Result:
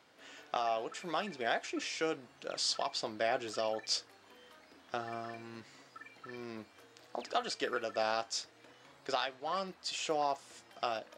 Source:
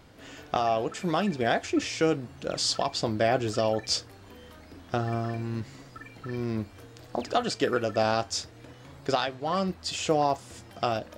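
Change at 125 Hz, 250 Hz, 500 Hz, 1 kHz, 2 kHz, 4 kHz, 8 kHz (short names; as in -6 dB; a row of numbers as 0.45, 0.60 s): -22.0, -14.5, -9.0, -7.0, -5.5, -5.5, -7.0 dB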